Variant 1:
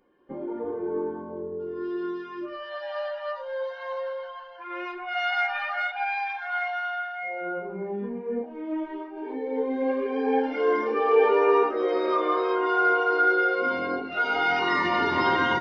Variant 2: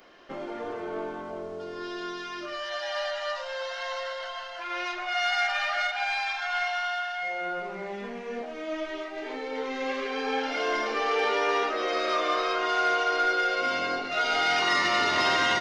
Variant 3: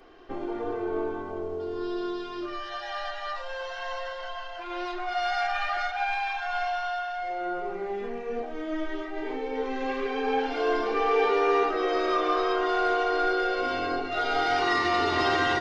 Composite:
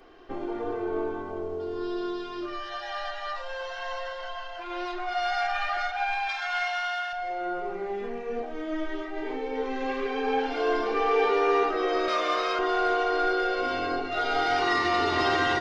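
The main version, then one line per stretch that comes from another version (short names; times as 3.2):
3
6.29–7.13 from 2
12.08–12.59 from 2
not used: 1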